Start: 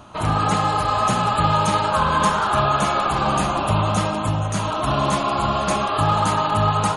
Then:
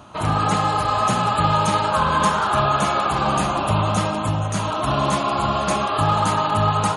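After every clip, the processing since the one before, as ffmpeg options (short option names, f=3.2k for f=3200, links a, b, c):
-af "highpass=54"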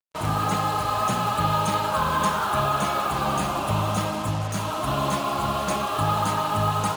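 -af "acrusher=bits=4:mix=0:aa=0.5,volume=-4.5dB"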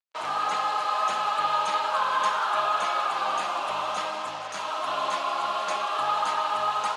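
-af "highpass=700,lowpass=5.3k"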